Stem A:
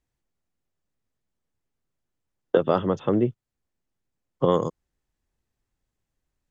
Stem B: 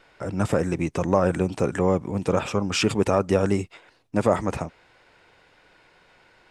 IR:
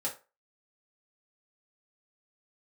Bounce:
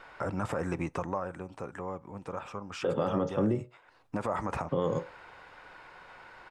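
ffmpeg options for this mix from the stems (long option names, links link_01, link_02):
-filter_complex "[0:a]adelay=300,volume=-7dB,asplit=2[link_01][link_02];[link_02]volume=-7dB[link_03];[1:a]acompressor=threshold=-42dB:ratio=1.5,equalizer=frequency=1100:width_type=o:width=1.8:gain=12.5,volume=7.5dB,afade=type=out:start_time=0.75:duration=0.5:silence=0.298538,afade=type=in:start_time=3.87:duration=0.28:silence=0.281838,asplit=2[link_04][link_05];[link_05]volume=-20.5dB[link_06];[2:a]atrim=start_sample=2205[link_07];[link_03][link_06]amix=inputs=2:normalize=0[link_08];[link_08][link_07]afir=irnorm=-1:irlink=0[link_09];[link_01][link_04][link_09]amix=inputs=3:normalize=0,lowshelf=frequency=160:gain=5,alimiter=limit=-19.5dB:level=0:latency=1:release=59"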